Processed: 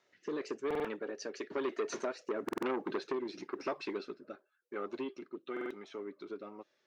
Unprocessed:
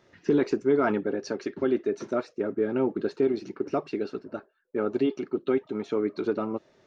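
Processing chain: Doppler pass-by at 2.60 s, 14 m/s, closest 3.2 m; high-pass 1 kHz 6 dB/octave; compression 12:1, threshold -45 dBFS, peak gain reduction 15.5 dB; rotary cabinet horn 1 Hz; buffer glitch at 0.66/2.44/5.52 s, samples 2048, times 3; transformer saturation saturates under 1 kHz; trim +17.5 dB

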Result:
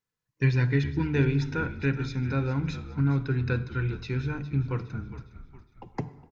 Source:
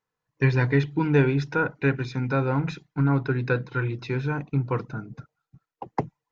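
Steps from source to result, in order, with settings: peaking EQ 760 Hz -11 dB 2.2 oct; de-hum 147.7 Hz, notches 27; frequency-shifting echo 411 ms, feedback 44%, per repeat -52 Hz, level -14 dB; on a send at -16.5 dB: reverberation RT60 1.4 s, pre-delay 33 ms

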